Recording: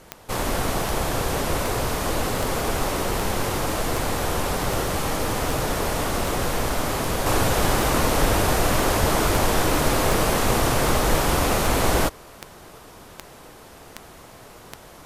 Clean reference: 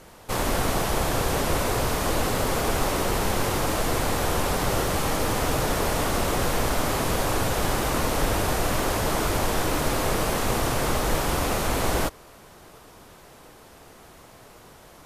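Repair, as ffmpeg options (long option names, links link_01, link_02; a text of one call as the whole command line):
ffmpeg -i in.wav -filter_complex "[0:a]adeclick=threshold=4,asplit=3[link_01][link_02][link_03];[link_01]afade=type=out:start_time=9:duration=0.02[link_04];[link_02]highpass=frequency=140:width=0.5412,highpass=frequency=140:width=1.3066,afade=type=in:start_time=9:duration=0.02,afade=type=out:start_time=9.12:duration=0.02[link_05];[link_03]afade=type=in:start_time=9.12:duration=0.02[link_06];[link_04][link_05][link_06]amix=inputs=3:normalize=0,asetnsamples=nb_out_samples=441:pad=0,asendcmd='7.26 volume volume -4dB',volume=0dB" out.wav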